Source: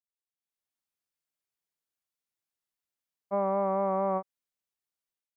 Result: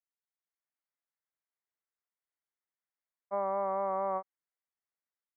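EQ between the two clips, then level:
high-pass filter 740 Hz 6 dB per octave
elliptic low-pass filter 2,100 Hz
0.0 dB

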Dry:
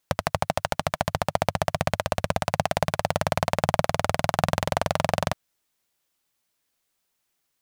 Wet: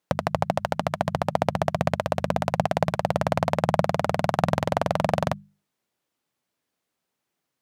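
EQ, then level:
high-pass filter 150 Hz 12 dB per octave
spectral tilt −2.5 dB per octave
mains-hum notches 50/100/150/200 Hz
0.0 dB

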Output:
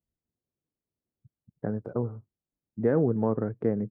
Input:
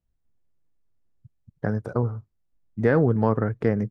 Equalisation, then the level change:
resonant band-pass 320 Hz, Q 0.66
−2.5 dB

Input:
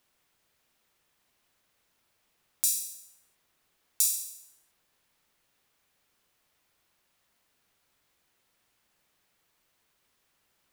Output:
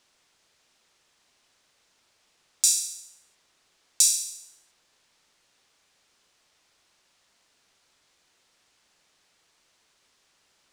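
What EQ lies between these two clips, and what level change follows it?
high-frequency loss of the air 99 metres
bass and treble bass −5 dB, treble +12 dB
+6.5 dB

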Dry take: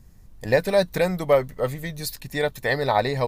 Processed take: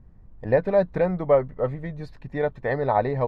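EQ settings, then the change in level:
low-pass filter 1,300 Hz 12 dB per octave
0.0 dB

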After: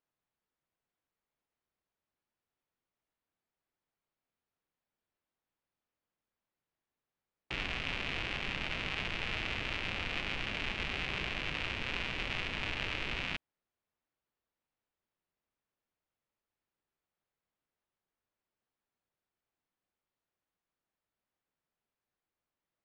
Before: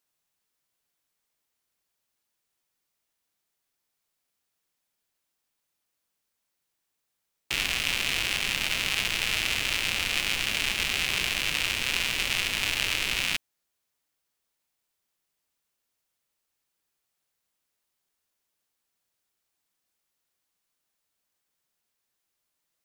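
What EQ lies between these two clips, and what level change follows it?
head-to-tape spacing loss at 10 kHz 34 dB
−1.0 dB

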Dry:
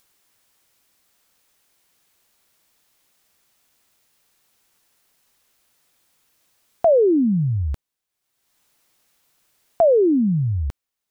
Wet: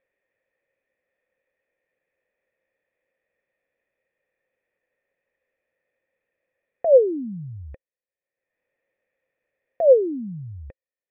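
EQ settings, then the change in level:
formant resonators in series e
+5.5 dB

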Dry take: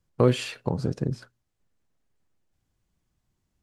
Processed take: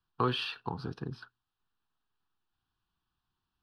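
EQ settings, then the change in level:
three-way crossover with the lows and the highs turned down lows −14 dB, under 430 Hz, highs −14 dB, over 4,600 Hz
phaser with its sweep stopped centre 2,100 Hz, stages 6
+2.5 dB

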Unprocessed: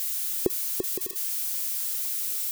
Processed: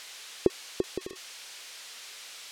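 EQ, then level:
low-pass filter 3,600 Hz 12 dB per octave
+2.0 dB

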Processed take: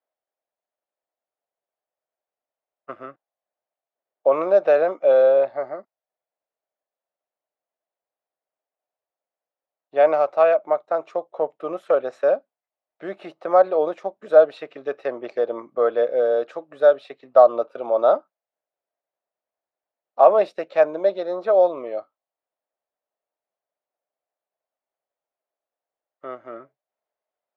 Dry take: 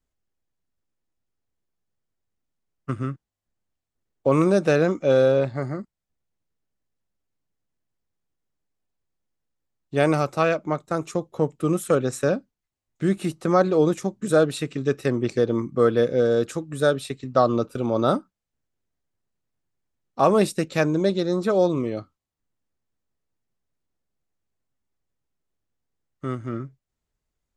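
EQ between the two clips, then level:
high-pass with resonance 630 Hz, resonance Q 4
high-frequency loss of the air 310 metres
−1.5 dB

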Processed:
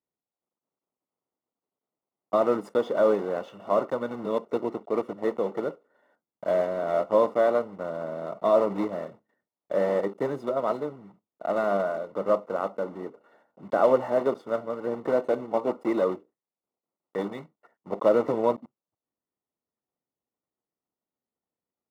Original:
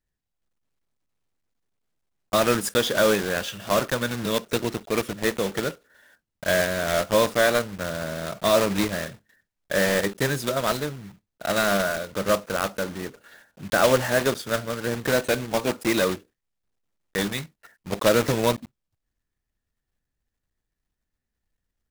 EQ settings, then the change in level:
Savitzky-Golay smoothing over 65 samples
high-pass filter 280 Hz 12 dB per octave
0.0 dB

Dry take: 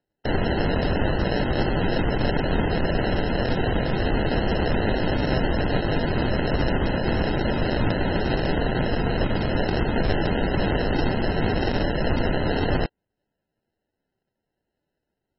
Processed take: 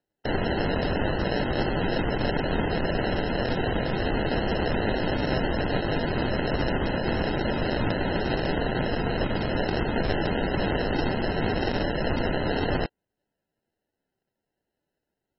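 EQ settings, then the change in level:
low-shelf EQ 160 Hz −4.5 dB
−1.5 dB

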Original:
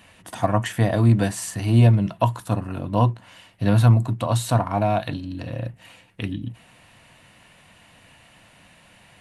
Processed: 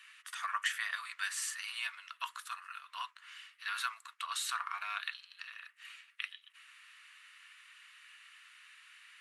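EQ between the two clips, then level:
Chebyshev high-pass filter 1,200 Hz, order 5
high-shelf EQ 8,800 Hz −11 dB
−1.5 dB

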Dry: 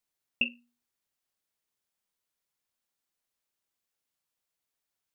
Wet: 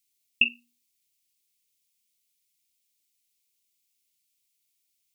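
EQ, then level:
elliptic band-stop filter 410–2,200 Hz
high-shelf EQ 2,000 Hz +11.5 dB
0.0 dB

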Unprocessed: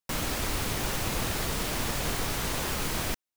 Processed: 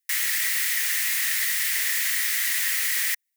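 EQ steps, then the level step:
high-pass with resonance 1,900 Hz, resonance Q 8.5
high-shelf EQ 2,600 Hz +11.5 dB
high-shelf EQ 7,500 Hz +10 dB
−7.5 dB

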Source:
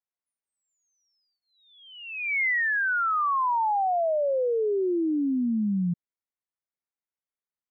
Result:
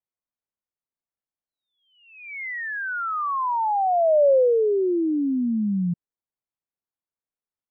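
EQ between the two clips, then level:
dynamic equaliser 560 Hz, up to +8 dB, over −41 dBFS, Q 2.1
Gaussian smoothing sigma 3.8 samples
high-frequency loss of the air 420 metres
+2.5 dB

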